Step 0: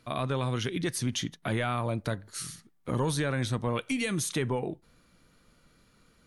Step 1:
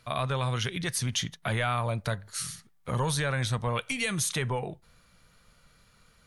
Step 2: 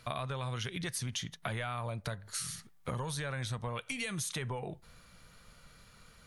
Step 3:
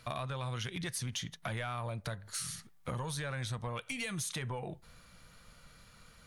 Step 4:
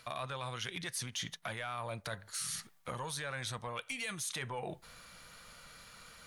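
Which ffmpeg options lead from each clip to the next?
ffmpeg -i in.wav -af "equalizer=frequency=300:width_type=o:width=0.95:gain=-13.5,volume=3.5dB" out.wav
ffmpeg -i in.wav -af "acompressor=threshold=-38dB:ratio=6,volume=3dB" out.wav
ffmpeg -i in.wav -af "bandreject=frequency=410:width=13,asoftclip=type=tanh:threshold=-27dB" out.wav
ffmpeg -i in.wav -af "lowshelf=frequency=290:gain=-11.5,areverse,acompressor=threshold=-43dB:ratio=6,areverse,volume=6.5dB" out.wav

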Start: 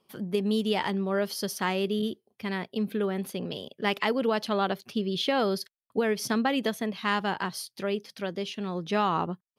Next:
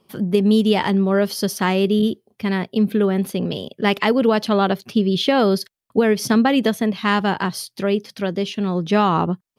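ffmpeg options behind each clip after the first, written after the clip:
ffmpeg -i in.wav -af "lowshelf=frequency=330:gain=7,volume=7dB" out.wav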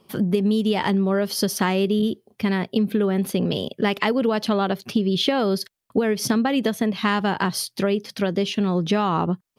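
ffmpeg -i in.wav -af "acompressor=threshold=-21dB:ratio=6,volume=3.5dB" out.wav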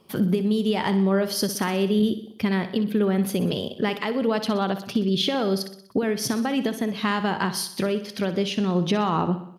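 ffmpeg -i in.wav -af "alimiter=limit=-13dB:level=0:latency=1:release=445,aecho=1:1:62|124|186|248|310|372:0.251|0.138|0.076|0.0418|0.023|0.0126" out.wav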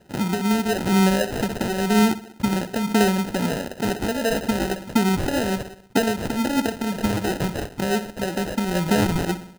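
ffmpeg -i in.wav -af "aphaser=in_gain=1:out_gain=1:delay=4.2:decay=0.37:speed=1:type=sinusoidal,acrusher=samples=39:mix=1:aa=0.000001" out.wav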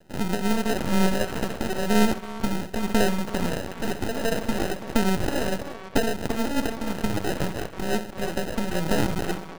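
ffmpeg -i in.wav -filter_complex "[0:a]asplit=2[link_01][link_02];[link_02]adelay=330,highpass=300,lowpass=3400,asoftclip=type=hard:threshold=-17dB,volume=-10dB[link_03];[link_01][link_03]amix=inputs=2:normalize=0,aeval=exprs='max(val(0),0)':channel_layout=same,volume=1.5dB" out.wav

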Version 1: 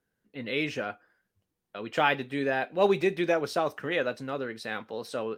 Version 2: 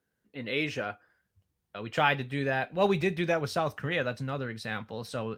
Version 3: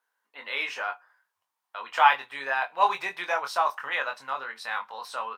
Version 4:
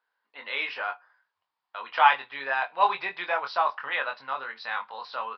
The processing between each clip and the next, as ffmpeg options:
ffmpeg -i in.wav -af "highpass=50,asubboost=boost=9:cutoff=120" out.wav
ffmpeg -i in.wav -filter_complex "[0:a]highpass=frequency=970:width_type=q:width=4.2,asplit=2[link_01][link_02];[link_02]adelay=22,volume=-5.5dB[link_03];[link_01][link_03]amix=inputs=2:normalize=0" out.wav
ffmpeg -i in.wav -af "aresample=11025,aresample=44100" out.wav

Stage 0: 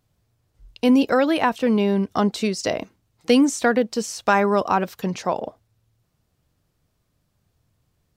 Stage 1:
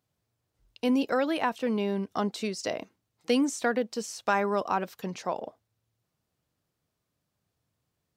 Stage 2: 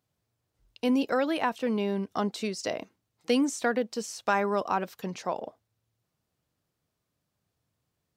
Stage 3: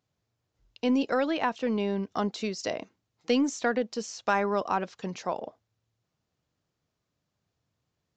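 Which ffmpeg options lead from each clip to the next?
ffmpeg -i in.wav -af "highpass=frequency=180:poles=1,volume=-7.5dB" out.wav
ffmpeg -i in.wav -af anull out.wav
ffmpeg -i in.wav -af "aresample=16000,aresample=44100,aeval=exprs='0.251*(cos(1*acos(clip(val(0)/0.251,-1,1)))-cos(1*PI/2))+0.00158*(cos(6*acos(clip(val(0)/0.251,-1,1)))-cos(6*PI/2))':channel_layout=same" out.wav

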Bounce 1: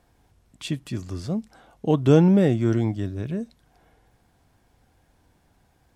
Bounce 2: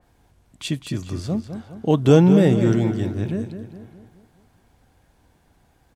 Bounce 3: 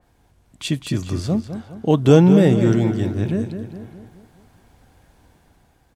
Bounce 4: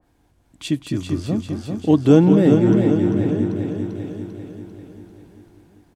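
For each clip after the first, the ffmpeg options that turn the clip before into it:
ffmpeg -i in.wav -filter_complex "[0:a]bandreject=frequency=5300:width=22,asplit=2[link_01][link_02];[link_02]adelay=207,lowpass=frequency=3900:poles=1,volume=-9dB,asplit=2[link_03][link_04];[link_04]adelay=207,lowpass=frequency=3900:poles=1,volume=0.49,asplit=2[link_05][link_06];[link_06]adelay=207,lowpass=frequency=3900:poles=1,volume=0.49,asplit=2[link_07][link_08];[link_08]adelay=207,lowpass=frequency=3900:poles=1,volume=0.49,asplit=2[link_09][link_10];[link_10]adelay=207,lowpass=frequency=3900:poles=1,volume=0.49,asplit=2[link_11][link_12];[link_12]adelay=207,lowpass=frequency=3900:poles=1,volume=0.49[link_13];[link_01][link_03][link_05][link_07][link_09][link_11][link_13]amix=inputs=7:normalize=0,adynamicequalizer=threshold=0.00891:dfrequency=2800:dqfactor=0.7:tfrequency=2800:tqfactor=0.7:attack=5:release=100:ratio=0.375:range=2:mode=boostabove:tftype=highshelf,volume=2.5dB" out.wav
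ffmpeg -i in.wav -af "dynaudnorm=framelen=210:gausssize=7:maxgain=5.5dB" out.wav
ffmpeg -i in.wav -filter_complex "[0:a]equalizer=frequency=300:width=4:gain=8.5,asplit=2[link_01][link_02];[link_02]aecho=0:1:394|788|1182|1576|1970|2364|2758:0.531|0.292|0.161|0.0883|0.0486|0.0267|0.0147[link_03];[link_01][link_03]amix=inputs=2:normalize=0,adynamicequalizer=threshold=0.0158:dfrequency=2400:dqfactor=0.7:tfrequency=2400:tqfactor=0.7:attack=5:release=100:ratio=0.375:range=3:mode=cutabove:tftype=highshelf,volume=-3.5dB" out.wav

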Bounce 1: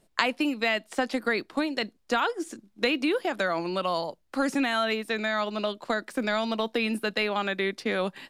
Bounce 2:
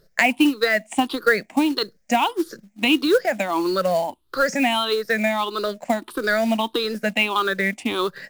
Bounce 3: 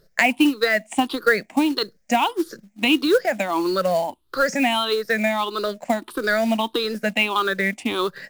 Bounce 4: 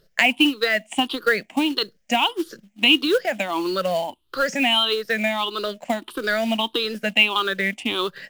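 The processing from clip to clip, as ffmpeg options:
ffmpeg -i in.wav -af "afftfilt=real='re*pow(10,19/40*sin(2*PI*(0.59*log(max(b,1)*sr/1024/100)/log(2)-(1.6)*(pts-256)/sr)))':imag='im*pow(10,19/40*sin(2*PI*(0.59*log(max(b,1)*sr/1024/100)/log(2)-(1.6)*(pts-256)/sr)))':win_size=1024:overlap=0.75,acrusher=bits=5:mode=log:mix=0:aa=0.000001,volume=2dB" out.wav
ffmpeg -i in.wav -af anull out.wav
ffmpeg -i in.wav -af "equalizer=frequency=3000:width_type=o:width=0.52:gain=10.5,volume=-2.5dB" out.wav

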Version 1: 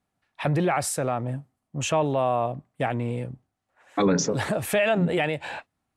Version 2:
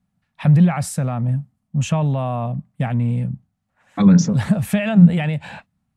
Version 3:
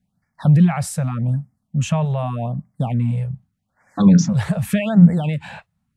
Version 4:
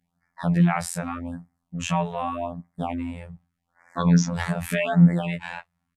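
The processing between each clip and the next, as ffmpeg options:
ffmpeg -i in.wav -af "lowshelf=frequency=260:width_type=q:width=3:gain=9.5,volume=-1dB" out.wav
ffmpeg -i in.wav -af "afftfilt=real='re*(1-between(b*sr/1024,240*pow(3400/240,0.5+0.5*sin(2*PI*0.84*pts/sr))/1.41,240*pow(3400/240,0.5+0.5*sin(2*PI*0.84*pts/sr))*1.41))':imag='im*(1-between(b*sr/1024,240*pow(3400/240,0.5+0.5*sin(2*PI*0.84*pts/sr))/1.41,240*pow(3400/240,0.5+0.5*sin(2*PI*0.84*pts/sr))*1.41))':win_size=1024:overlap=0.75" out.wav
ffmpeg -i in.wav -af "afftfilt=real='hypot(re,im)*cos(PI*b)':imag='0':win_size=2048:overlap=0.75,equalizer=frequency=125:width_type=o:width=1:gain=-8,equalizer=frequency=1000:width_type=o:width=1:gain=5,equalizer=frequency=2000:width_type=o:width=1:gain=5,aresample=32000,aresample=44100" out.wav

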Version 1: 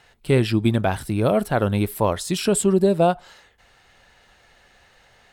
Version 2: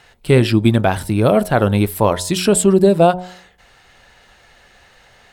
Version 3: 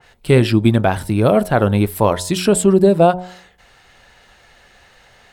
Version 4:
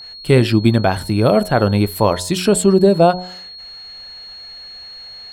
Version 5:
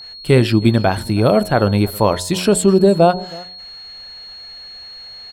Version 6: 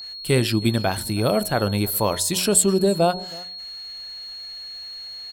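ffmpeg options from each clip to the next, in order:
ffmpeg -i in.wav -af "bandreject=frequency=90.74:width_type=h:width=4,bandreject=frequency=181.48:width_type=h:width=4,bandreject=frequency=272.22:width_type=h:width=4,bandreject=frequency=362.96:width_type=h:width=4,bandreject=frequency=453.7:width_type=h:width=4,bandreject=frequency=544.44:width_type=h:width=4,bandreject=frequency=635.18:width_type=h:width=4,bandreject=frequency=725.92:width_type=h:width=4,bandreject=frequency=816.66:width_type=h:width=4,bandreject=frequency=907.4:width_type=h:width=4,bandreject=frequency=998.14:width_type=h:width=4,volume=6dB" out.wav
ffmpeg -i in.wav -af "adynamicequalizer=threshold=0.0316:dfrequency=2300:dqfactor=0.7:tfrequency=2300:tqfactor=0.7:attack=5:release=100:ratio=0.375:range=2:mode=cutabove:tftype=highshelf" out.wav
ffmpeg -i in.wav -af "aeval=exprs='val(0)+0.0224*sin(2*PI*4300*n/s)':channel_layout=same" out.wav
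ffmpeg -i in.wav -af "aecho=1:1:321:0.0794" out.wav
ffmpeg -i in.wav -af "crystalizer=i=3:c=0,volume=-7.5dB" out.wav

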